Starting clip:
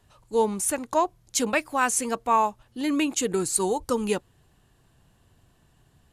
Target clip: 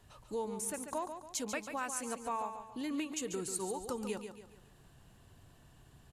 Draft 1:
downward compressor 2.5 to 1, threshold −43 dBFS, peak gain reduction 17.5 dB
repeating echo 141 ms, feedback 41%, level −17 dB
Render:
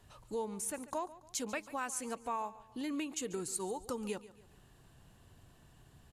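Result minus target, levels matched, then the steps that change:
echo-to-direct −9 dB
change: repeating echo 141 ms, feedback 41%, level −8 dB

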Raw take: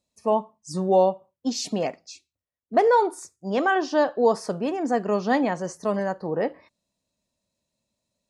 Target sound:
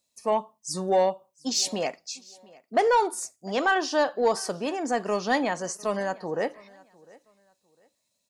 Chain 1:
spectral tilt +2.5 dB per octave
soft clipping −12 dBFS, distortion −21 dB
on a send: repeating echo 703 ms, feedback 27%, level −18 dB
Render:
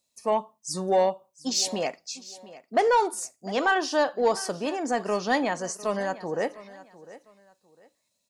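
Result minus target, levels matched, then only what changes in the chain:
echo-to-direct +6 dB
change: repeating echo 703 ms, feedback 27%, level −24 dB

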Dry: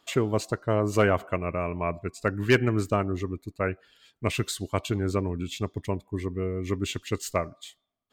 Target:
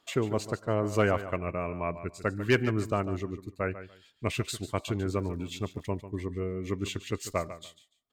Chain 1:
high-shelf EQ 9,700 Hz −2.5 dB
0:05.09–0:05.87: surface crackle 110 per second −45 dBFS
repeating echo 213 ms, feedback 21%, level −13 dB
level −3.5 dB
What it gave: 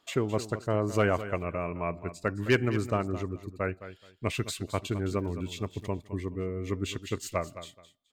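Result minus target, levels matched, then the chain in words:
echo 68 ms late
high-shelf EQ 9,700 Hz −2.5 dB
0:05.09–0:05.87: surface crackle 110 per second −45 dBFS
repeating echo 145 ms, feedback 21%, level −13 dB
level −3.5 dB

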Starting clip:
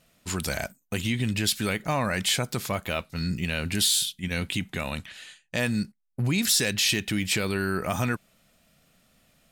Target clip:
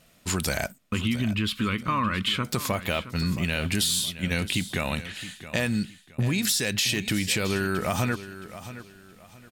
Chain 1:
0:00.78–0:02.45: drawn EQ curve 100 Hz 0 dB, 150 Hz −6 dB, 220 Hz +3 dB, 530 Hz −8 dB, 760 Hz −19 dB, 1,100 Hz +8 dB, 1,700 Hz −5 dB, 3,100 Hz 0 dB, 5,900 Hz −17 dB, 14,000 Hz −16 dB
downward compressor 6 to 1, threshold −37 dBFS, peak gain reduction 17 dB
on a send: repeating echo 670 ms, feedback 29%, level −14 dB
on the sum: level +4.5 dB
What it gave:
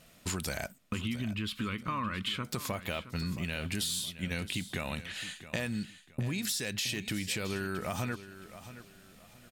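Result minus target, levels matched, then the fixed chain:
downward compressor: peak gain reduction +9 dB
0:00.78–0:02.45: drawn EQ curve 100 Hz 0 dB, 150 Hz −6 dB, 220 Hz +3 dB, 530 Hz −8 dB, 760 Hz −19 dB, 1,100 Hz +8 dB, 1,700 Hz −5 dB, 3,100 Hz 0 dB, 5,900 Hz −17 dB, 14,000 Hz −16 dB
downward compressor 6 to 1, threshold −26.5 dBFS, peak gain reduction 8 dB
on a send: repeating echo 670 ms, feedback 29%, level −14 dB
on the sum: level +4.5 dB

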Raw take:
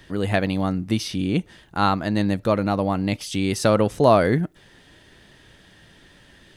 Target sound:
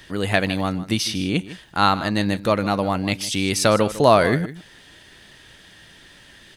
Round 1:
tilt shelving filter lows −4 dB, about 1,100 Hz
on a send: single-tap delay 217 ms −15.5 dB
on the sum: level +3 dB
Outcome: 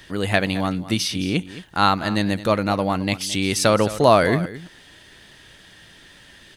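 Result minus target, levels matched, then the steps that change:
echo 62 ms late
change: single-tap delay 155 ms −15.5 dB

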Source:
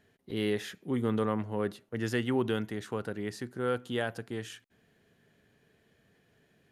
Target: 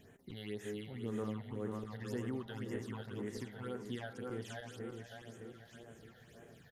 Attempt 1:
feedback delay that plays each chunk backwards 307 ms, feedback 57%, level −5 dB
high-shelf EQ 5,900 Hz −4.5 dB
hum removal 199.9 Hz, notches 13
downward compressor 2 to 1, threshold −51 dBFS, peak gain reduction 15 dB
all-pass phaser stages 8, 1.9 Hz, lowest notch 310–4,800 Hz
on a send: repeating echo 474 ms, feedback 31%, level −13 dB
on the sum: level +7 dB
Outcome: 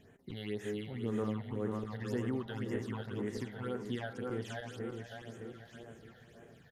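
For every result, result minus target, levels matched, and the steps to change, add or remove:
downward compressor: peak gain reduction −4.5 dB; 8,000 Hz band −4.0 dB
change: downward compressor 2 to 1, threshold −59.5 dBFS, peak gain reduction 19 dB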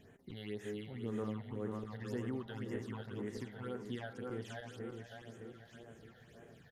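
8,000 Hz band −4.0 dB
change: high-shelf EQ 5,900 Hz +2.5 dB

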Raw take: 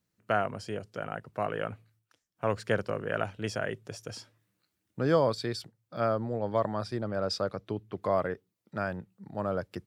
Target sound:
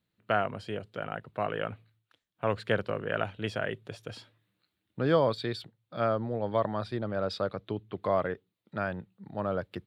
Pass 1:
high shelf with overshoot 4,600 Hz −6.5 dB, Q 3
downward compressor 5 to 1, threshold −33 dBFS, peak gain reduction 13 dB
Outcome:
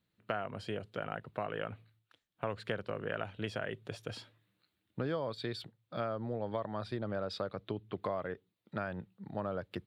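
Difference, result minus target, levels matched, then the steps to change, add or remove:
downward compressor: peak gain reduction +13 dB
remove: downward compressor 5 to 1, threshold −33 dBFS, peak gain reduction 13 dB

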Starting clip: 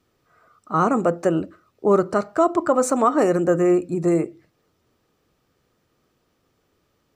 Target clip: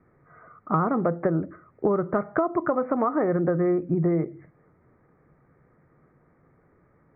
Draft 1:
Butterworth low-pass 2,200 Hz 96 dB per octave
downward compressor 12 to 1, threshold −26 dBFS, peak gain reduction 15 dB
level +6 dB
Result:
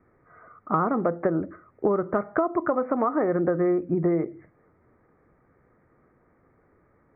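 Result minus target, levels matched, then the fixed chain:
125 Hz band −4.0 dB
Butterworth low-pass 2,200 Hz 96 dB per octave
parametric band 150 Hz +8.5 dB 0.45 octaves
downward compressor 12 to 1, threshold −26 dBFS, peak gain reduction 15 dB
level +6 dB

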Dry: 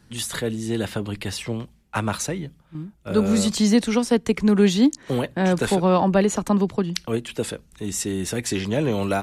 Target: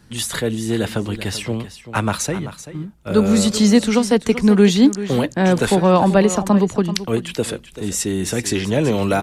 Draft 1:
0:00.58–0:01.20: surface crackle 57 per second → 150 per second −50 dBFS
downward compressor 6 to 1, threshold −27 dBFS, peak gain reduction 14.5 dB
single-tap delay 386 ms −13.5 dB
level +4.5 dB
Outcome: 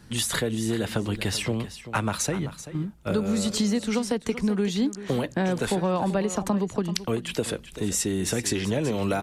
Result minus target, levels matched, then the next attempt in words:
downward compressor: peak gain reduction +14.5 dB
0:00.58–0:01.20: surface crackle 57 per second → 150 per second −50 dBFS
single-tap delay 386 ms −13.5 dB
level +4.5 dB

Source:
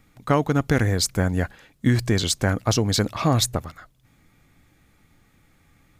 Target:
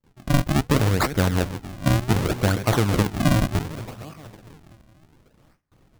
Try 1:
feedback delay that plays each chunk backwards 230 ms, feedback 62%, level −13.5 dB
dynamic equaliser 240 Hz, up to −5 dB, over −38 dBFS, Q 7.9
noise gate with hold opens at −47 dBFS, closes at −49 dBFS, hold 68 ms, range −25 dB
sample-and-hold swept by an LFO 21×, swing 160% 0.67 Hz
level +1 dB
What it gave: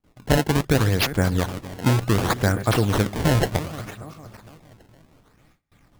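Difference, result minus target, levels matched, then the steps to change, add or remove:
sample-and-hold swept by an LFO: distortion −6 dB
change: sample-and-hold swept by an LFO 57×, swing 160% 0.67 Hz

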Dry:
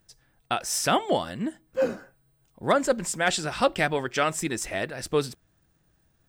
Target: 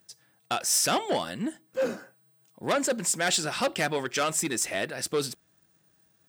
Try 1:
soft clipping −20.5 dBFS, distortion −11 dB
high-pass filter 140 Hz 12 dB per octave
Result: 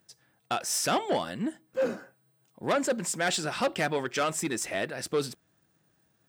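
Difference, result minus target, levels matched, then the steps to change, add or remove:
8,000 Hz band −3.5 dB
add after high-pass filter: high-shelf EQ 3,300 Hz +6.5 dB

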